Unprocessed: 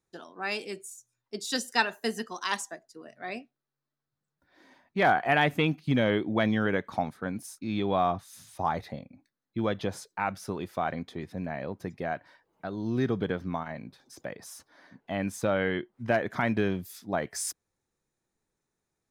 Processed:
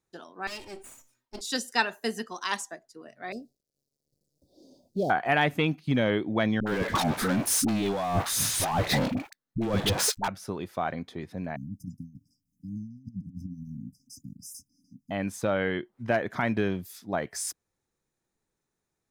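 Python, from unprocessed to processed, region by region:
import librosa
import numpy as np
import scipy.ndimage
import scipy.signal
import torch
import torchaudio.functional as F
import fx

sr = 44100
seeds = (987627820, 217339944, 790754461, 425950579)

y = fx.chain(x, sr, fx.lower_of_two(delay_ms=3.2),
    fx.comb_fb(f0_hz=130.0, decay_s=0.21, harmonics='all', damping=0.0, mix_pct=40),
    fx.sustainer(db_per_s=130.0), at=(0.47, 1.41))
y = fx.chain(y, sr, fx.law_mismatch(coded='mu'),
    fx.cheby1_bandstop(low_hz=560.0, high_hz=4700.0, order=3),
    fx.high_shelf(hz=10000.0, db=-7.5), at=(3.32, 5.1))
y = fx.chain(y, sr, fx.over_compress(threshold_db=-39.0, ratio=-1.0),
    fx.leveller(passes=5),
    fx.dispersion(late='highs', ms=68.0, hz=490.0), at=(6.6, 10.28))
y = fx.chain(y, sr, fx.filter_lfo_notch(shape='saw_up', hz=6.7, low_hz=940.0, high_hz=6200.0, q=0.71),
    fx.over_compress(threshold_db=-35.0, ratio=-0.5),
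    fx.brickwall_bandstop(low_hz=290.0, high_hz=4800.0), at=(11.56, 15.11))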